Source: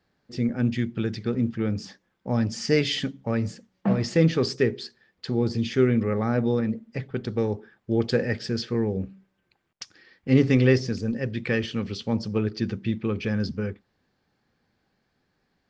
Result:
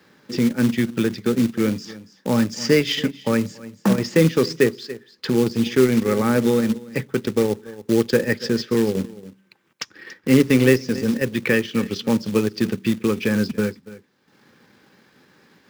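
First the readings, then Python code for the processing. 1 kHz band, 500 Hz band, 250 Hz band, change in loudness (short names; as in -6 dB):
+6.0 dB, +6.0 dB, +5.5 dB, +5.0 dB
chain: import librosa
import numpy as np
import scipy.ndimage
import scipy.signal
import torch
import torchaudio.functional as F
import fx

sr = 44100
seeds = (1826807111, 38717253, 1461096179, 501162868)

p1 = scipy.signal.sosfilt(scipy.signal.butter(2, 170.0, 'highpass', fs=sr, output='sos'), x)
p2 = fx.notch(p1, sr, hz=4400.0, q=17.0)
p3 = fx.quant_float(p2, sr, bits=2)
p4 = fx.peak_eq(p3, sr, hz=700.0, db=-12.0, octaves=0.24)
p5 = p4 + fx.echo_single(p4, sr, ms=281, db=-18.0, dry=0)
p6 = fx.transient(p5, sr, attack_db=0, sustain_db=-7)
p7 = fx.band_squash(p6, sr, depth_pct=40)
y = p7 * librosa.db_to_amplitude(7.5)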